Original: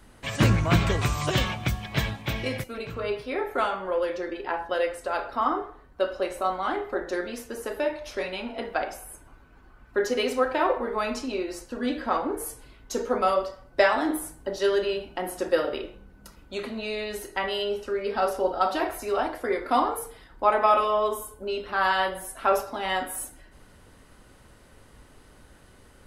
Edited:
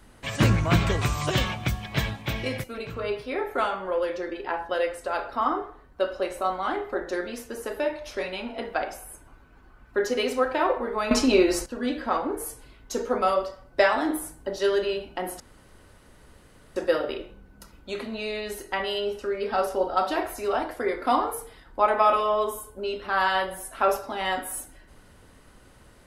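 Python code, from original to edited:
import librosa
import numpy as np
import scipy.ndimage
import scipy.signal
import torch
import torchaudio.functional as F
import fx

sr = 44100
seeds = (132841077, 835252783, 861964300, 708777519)

y = fx.edit(x, sr, fx.clip_gain(start_s=11.11, length_s=0.55, db=11.0),
    fx.insert_room_tone(at_s=15.4, length_s=1.36), tone=tone)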